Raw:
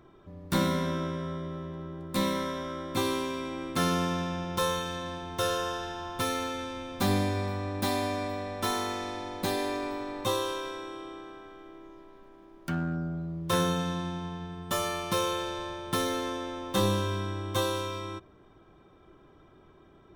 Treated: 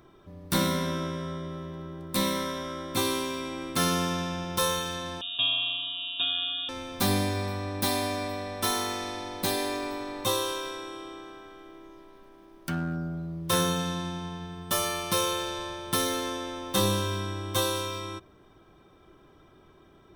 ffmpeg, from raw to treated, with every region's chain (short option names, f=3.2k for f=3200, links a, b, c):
-filter_complex "[0:a]asettb=1/sr,asplit=3[a][b][c];[a]atrim=end=5.214[d];[b]atrim=start=5.21:end=6.69,asetpts=PTS-STARTPTS,afade=t=in:d=0.004:c=qsin,afade=t=out:st=1.476:d=0.004:c=qsin,asuperstop=centerf=1700:order=4:qfactor=1.3,lowpass=f=3.2k:t=q:w=0.5098,lowpass=f=3.2k:t=q:w=0.6013,lowpass=f=3.2k:t=q:w=0.9,lowpass=f=3.2k:t=q:w=2.563,afreqshift=-3800[e];[c]atrim=start=6.686[f];[d][e]acrossfade=d=0.004:c1=hsin:c2=qsin[g];[g][f]acrossfade=d=0.004:c1=qsin:c2=hsin,highshelf=f=3.7k:g=9,bandreject=f=7k:w=11"